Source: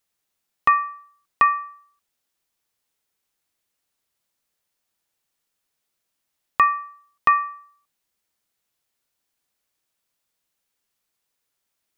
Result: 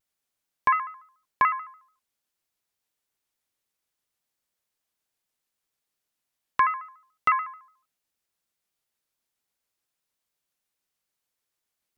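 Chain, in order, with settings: shaped vibrato square 6.9 Hz, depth 160 cents; gain -5 dB

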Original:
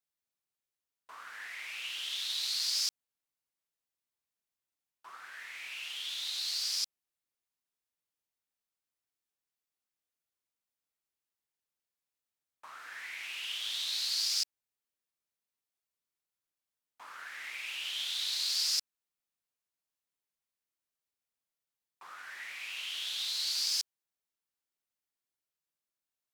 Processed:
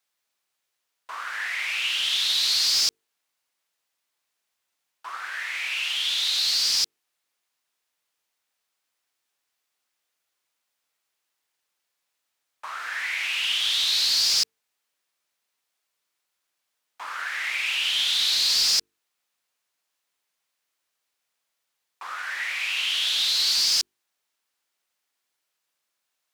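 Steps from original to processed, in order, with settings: notches 50/100/150/200/250/300/350/400/450 Hz; overdrive pedal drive 13 dB, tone 6000 Hz, clips at -19 dBFS; gain +7 dB

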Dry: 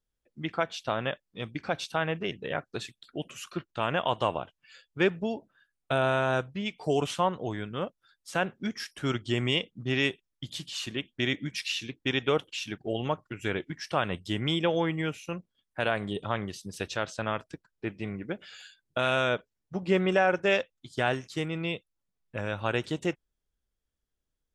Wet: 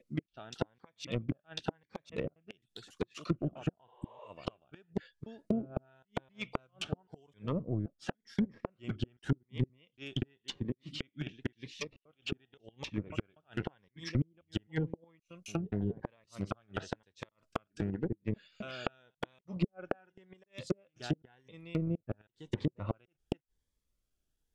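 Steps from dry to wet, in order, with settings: slices in reverse order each 0.262 s, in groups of 2; pre-echo 0.242 s -19 dB; dynamic EQ 310 Hz, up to -3 dB, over -37 dBFS, Q 0.82; flipped gate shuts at -20 dBFS, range -36 dB; in parallel at -5 dB: sample gate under -30.5 dBFS; on the sum: treble ducked by the level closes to 320 Hz, closed at -29 dBFS; spectral repair 3.91–4.25, 350–7300 Hz both; cascading phaser rising 0.92 Hz; gain +2 dB

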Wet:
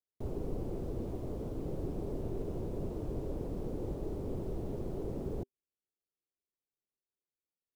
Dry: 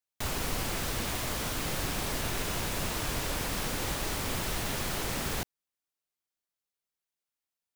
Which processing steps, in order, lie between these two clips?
EQ curve 250 Hz 0 dB, 390 Hz +6 dB, 1700 Hz -28 dB; gain -2.5 dB

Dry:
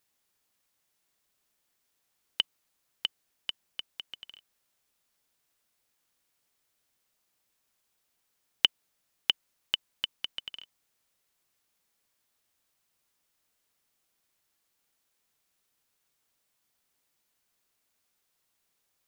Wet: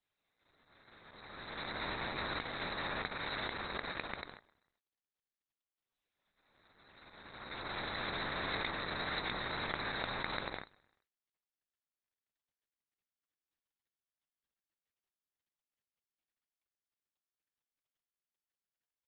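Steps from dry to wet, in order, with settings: spectral swells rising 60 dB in 2.32 s; steep low-pass 6400 Hz 96 dB/oct; de-hum 243.5 Hz, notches 3; spectral gate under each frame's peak -25 dB weak; reverse; compressor 10:1, threshold -49 dBFS, peak gain reduction 21 dB; reverse; overloaded stage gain 34 dB; on a send: feedback echo 0.129 s, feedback 44%, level -21.5 dB; on the sum: gain +17.5 dB; Opus 8 kbps 48000 Hz

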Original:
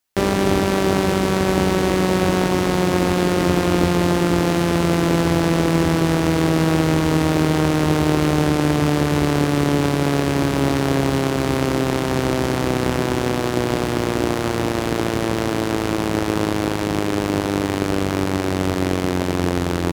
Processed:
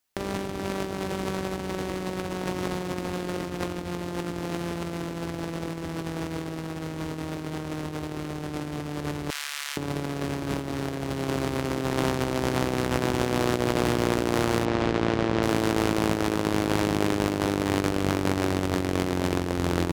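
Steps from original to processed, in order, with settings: 9.3–9.77 Bessel high-pass 2100 Hz, order 4; negative-ratio compressor -22 dBFS, ratio -0.5; 14.65–15.43 air absorption 120 m; gain -5 dB

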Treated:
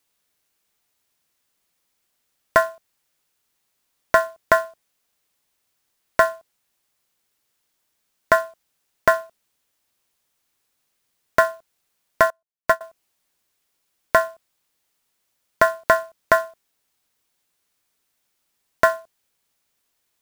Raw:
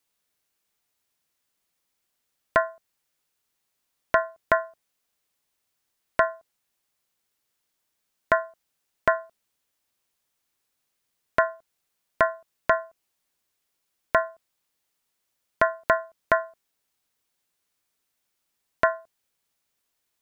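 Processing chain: short-mantissa float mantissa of 2-bit; 12.3–12.81 upward expander 2.5:1, over -35 dBFS; gain +5 dB

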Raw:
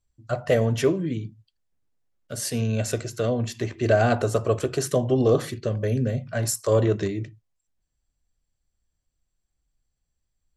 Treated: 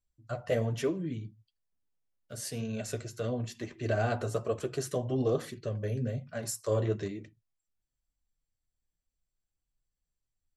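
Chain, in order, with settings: flange 1.1 Hz, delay 3.5 ms, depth 7.4 ms, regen -33%; gain -5.5 dB

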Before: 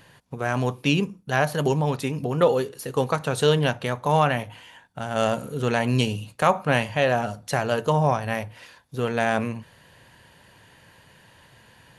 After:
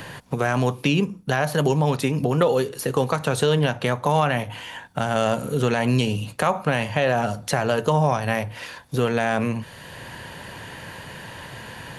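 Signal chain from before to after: in parallel at +2 dB: compressor, threshold -29 dBFS, peak gain reduction 15 dB; on the sum: limiter -8.5 dBFS, peak gain reduction 5 dB; three-band squash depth 40%

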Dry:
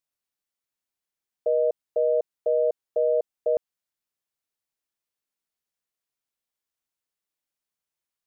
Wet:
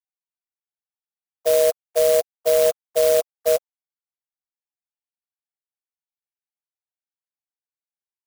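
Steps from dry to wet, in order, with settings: sine-wave speech; clock jitter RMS 0.072 ms; gain +5.5 dB

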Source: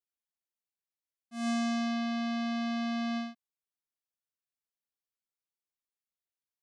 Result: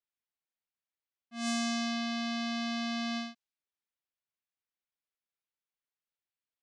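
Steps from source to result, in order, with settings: high shelf 2200 Hz +11 dB; low-pass opened by the level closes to 2600 Hz, open at -27.5 dBFS; gain -3 dB

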